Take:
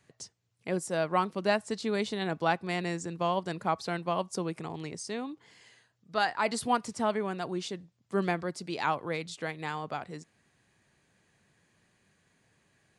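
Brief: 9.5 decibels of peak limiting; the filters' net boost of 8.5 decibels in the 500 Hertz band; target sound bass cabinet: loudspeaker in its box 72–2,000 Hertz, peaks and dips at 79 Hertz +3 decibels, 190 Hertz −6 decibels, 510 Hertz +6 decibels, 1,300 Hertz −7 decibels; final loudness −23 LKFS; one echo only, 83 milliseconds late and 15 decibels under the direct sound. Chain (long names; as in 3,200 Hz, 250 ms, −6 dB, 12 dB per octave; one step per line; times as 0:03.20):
parametric band 500 Hz +7.5 dB
brickwall limiter −19.5 dBFS
loudspeaker in its box 72–2,000 Hz, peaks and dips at 79 Hz +3 dB, 190 Hz −6 dB, 510 Hz +6 dB, 1,300 Hz −7 dB
single-tap delay 83 ms −15 dB
level +7.5 dB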